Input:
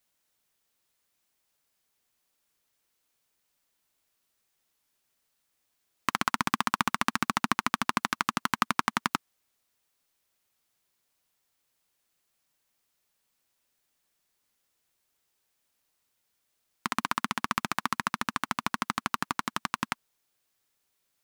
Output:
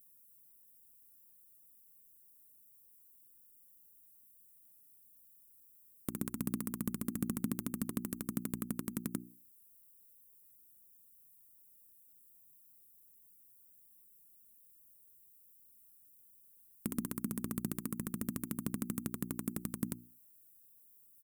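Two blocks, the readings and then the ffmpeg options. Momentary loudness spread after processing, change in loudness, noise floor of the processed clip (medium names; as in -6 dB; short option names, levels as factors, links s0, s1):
21 LU, -9.5 dB, -63 dBFS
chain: -af "alimiter=limit=0.473:level=0:latency=1:release=95,bandreject=f=60:t=h:w=6,bandreject=f=120:t=h:w=6,bandreject=f=180:t=h:w=6,bandreject=f=240:t=h:w=6,bandreject=f=300:t=h:w=6,bandreject=f=360:t=h:w=6,acompressor=threshold=0.0282:ratio=3,firequalizer=gain_entry='entry(180,0);entry(350,-4);entry(770,-24);entry(3900,-28);entry(8500,0);entry(14000,9)':delay=0.05:min_phase=1,asoftclip=type=hard:threshold=0.0299,volume=2.66"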